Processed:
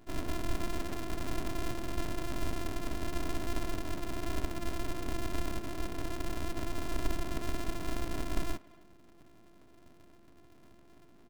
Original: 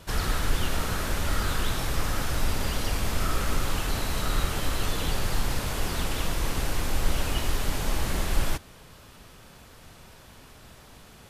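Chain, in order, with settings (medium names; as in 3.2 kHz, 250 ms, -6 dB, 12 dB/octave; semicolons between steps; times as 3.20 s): sorted samples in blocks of 128 samples; full-wave rectifier; speakerphone echo 240 ms, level -21 dB; trim -7 dB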